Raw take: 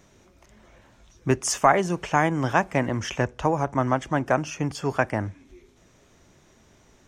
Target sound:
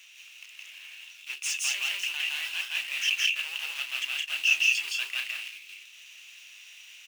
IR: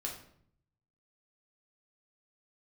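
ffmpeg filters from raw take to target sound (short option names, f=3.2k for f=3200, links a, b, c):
-af "areverse,acompressor=threshold=-29dB:ratio=12,areverse,volume=29.5dB,asoftclip=hard,volume=-29.5dB,acrusher=bits=2:mode=log:mix=0:aa=0.000001,highpass=f=2.7k:t=q:w=9.5,aecho=1:1:166.2|198.3:1|0.562,volume=3dB"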